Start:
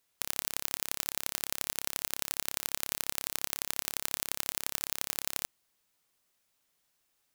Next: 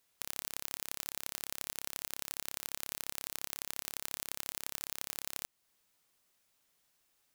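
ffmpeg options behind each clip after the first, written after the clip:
-af "alimiter=limit=-10dB:level=0:latency=1:release=271,volume=1dB"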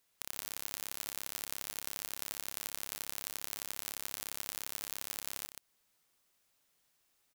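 -af "aecho=1:1:127:0.398,volume=-1dB"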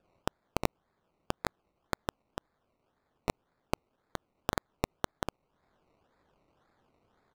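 -af "acrusher=samples=21:mix=1:aa=0.000001:lfo=1:lforange=12.6:lforate=1.9,adynamicsmooth=sensitivity=6:basefreq=5.2k,volume=16dB,asoftclip=hard,volume=-16dB,volume=4.5dB"

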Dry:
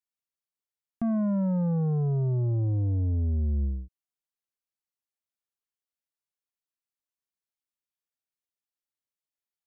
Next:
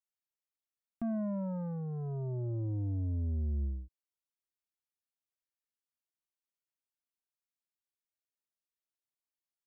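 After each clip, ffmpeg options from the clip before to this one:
-af "aecho=1:1:3.2:0.41,volume=-7.5dB"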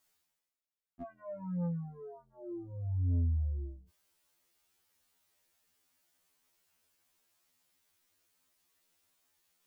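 -af "areverse,acompressor=mode=upward:threshold=-55dB:ratio=2.5,areverse,afftfilt=real='re*2*eq(mod(b,4),0)':imag='im*2*eq(mod(b,4),0)':win_size=2048:overlap=0.75"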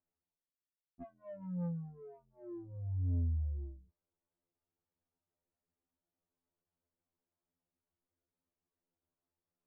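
-af "adynamicsmooth=sensitivity=2.5:basefreq=660,volume=-3dB"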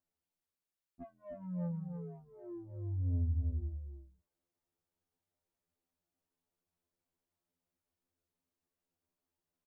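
-af "aecho=1:1:311:0.473"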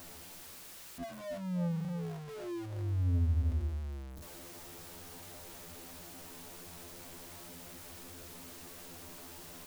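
-af "aeval=exprs='val(0)+0.5*0.00668*sgn(val(0))':c=same,volume=2.5dB"

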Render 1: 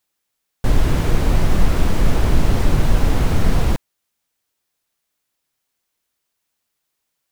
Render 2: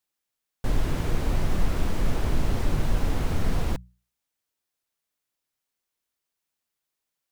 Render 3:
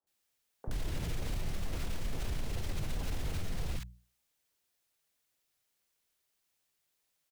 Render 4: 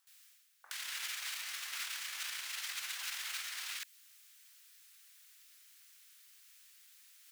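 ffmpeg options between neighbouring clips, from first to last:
-af "bandreject=f=60:t=h:w=6,bandreject=f=120:t=h:w=6,bandreject=f=180:t=h:w=6,volume=-8.5dB"
-filter_complex "[0:a]acrossover=split=200|2100[a][b][c];[a]acompressor=threshold=-29dB:ratio=4[d];[b]acompressor=threshold=-45dB:ratio=4[e];[c]acompressor=threshold=-47dB:ratio=4[f];[d][e][f]amix=inputs=3:normalize=0,alimiter=level_in=8dB:limit=-24dB:level=0:latency=1:release=27,volume=-8dB,acrossover=split=260|1100[g][h][i];[g]adelay=30[j];[i]adelay=70[k];[j][h][k]amix=inputs=3:normalize=0,volume=4.5dB"
-af "highpass=f=1.4k:w=0.5412,highpass=f=1.4k:w=1.3066,areverse,acompressor=mode=upward:threshold=-58dB:ratio=2.5,areverse,volume=8dB"

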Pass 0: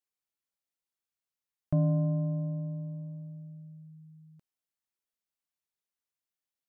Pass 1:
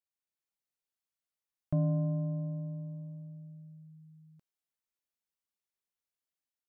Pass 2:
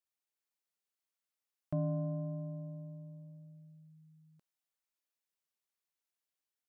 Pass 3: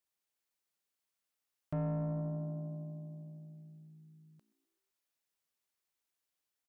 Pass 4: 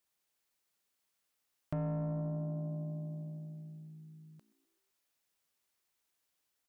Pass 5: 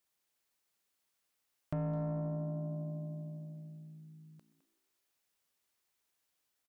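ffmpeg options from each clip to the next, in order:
-af "dynaudnorm=f=130:g=5:m=5dB,volume=-8dB"
-af "lowshelf=f=180:g=-10.5"
-filter_complex "[0:a]asplit=5[a][b][c][d][e];[b]adelay=127,afreqshift=58,volume=-20.5dB[f];[c]adelay=254,afreqshift=116,volume=-25.9dB[g];[d]adelay=381,afreqshift=174,volume=-31.2dB[h];[e]adelay=508,afreqshift=232,volume=-36.6dB[i];[a][f][g][h][i]amix=inputs=5:normalize=0,asoftclip=type=tanh:threshold=-33.5dB,volume=3dB"
-af "acompressor=threshold=-42dB:ratio=2.5,volume=5.5dB"
-filter_complex "[0:a]asplit=2[a][b];[b]adelay=210,highpass=300,lowpass=3.4k,asoftclip=type=hard:threshold=-34.5dB,volume=-11dB[c];[a][c]amix=inputs=2:normalize=0"

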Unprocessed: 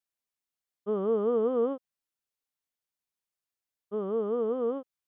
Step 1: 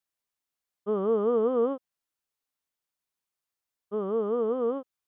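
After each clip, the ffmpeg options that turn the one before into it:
-af "equalizer=f=1.1k:w=1.5:g=2.5,volume=1.5dB"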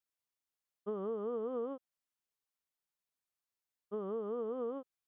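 -af "acompressor=threshold=-29dB:ratio=6,volume=-6dB"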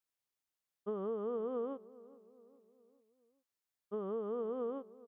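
-filter_complex "[0:a]asplit=2[a][b];[b]adelay=413,lowpass=f=1.3k:p=1,volume=-19dB,asplit=2[c][d];[d]adelay=413,lowpass=f=1.3k:p=1,volume=0.53,asplit=2[e][f];[f]adelay=413,lowpass=f=1.3k:p=1,volume=0.53,asplit=2[g][h];[h]adelay=413,lowpass=f=1.3k:p=1,volume=0.53[i];[a][c][e][g][i]amix=inputs=5:normalize=0"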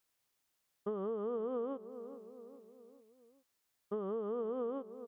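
-af "acompressor=threshold=-49dB:ratio=2.5,volume=9.5dB"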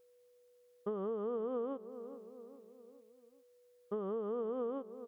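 -af "aeval=exprs='val(0)+0.000631*sin(2*PI*490*n/s)':c=same"

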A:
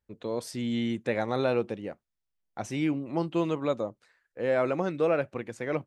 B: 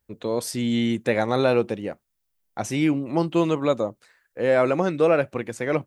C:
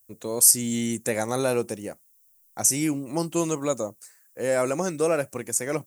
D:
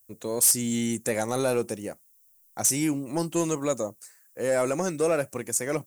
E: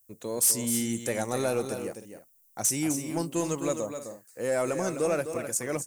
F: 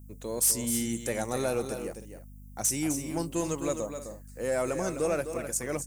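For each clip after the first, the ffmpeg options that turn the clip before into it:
-af "highshelf=f=9.3k:g=11,volume=6.5dB"
-af "aexciter=amount=15.3:drive=3.8:freq=5.5k,volume=-4.5dB"
-af "asoftclip=type=tanh:threshold=-14dB"
-af "aecho=1:1:257|310:0.376|0.15,volume=-3dB"
-af "aeval=exprs='val(0)+0.00562*(sin(2*PI*50*n/s)+sin(2*PI*2*50*n/s)/2+sin(2*PI*3*50*n/s)/3+sin(2*PI*4*50*n/s)/4+sin(2*PI*5*50*n/s)/5)':c=same,volume=-1.5dB"

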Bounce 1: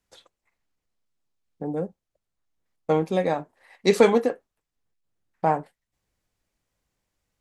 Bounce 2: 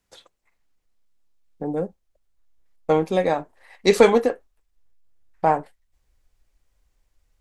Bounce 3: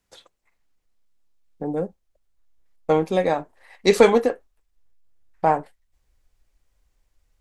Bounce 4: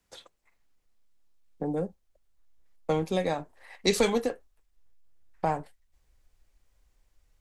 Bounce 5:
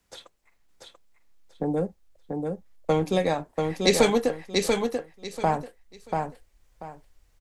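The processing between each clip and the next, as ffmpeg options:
-af "asubboost=boost=8.5:cutoff=51,volume=3.5dB"
-af anull
-filter_complex "[0:a]acrossover=split=170|3000[a][b][c];[b]acompressor=threshold=-32dB:ratio=2[d];[a][d][c]amix=inputs=3:normalize=0"
-af "aecho=1:1:688|1376|2064:0.631|0.145|0.0334,volume=4dB"

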